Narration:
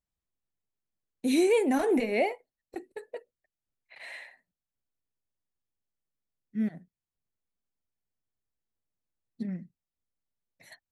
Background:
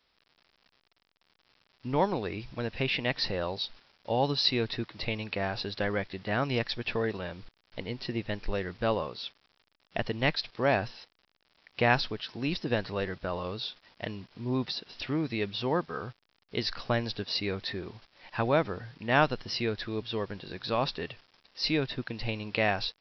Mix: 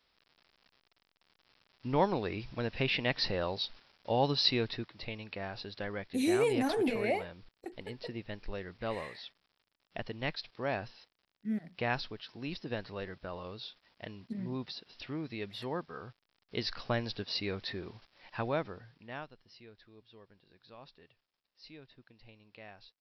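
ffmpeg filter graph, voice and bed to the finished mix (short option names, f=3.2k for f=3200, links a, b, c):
-filter_complex "[0:a]adelay=4900,volume=-5dB[a];[1:a]volume=3dB,afade=t=out:st=4.51:d=0.46:silence=0.446684,afade=t=in:st=16.07:d=0.45:silence=0.595662,afade=t=out:st=18.13:d=1.14:silence=0.1[b];[a][b]amix=inputs=2:normalize=0"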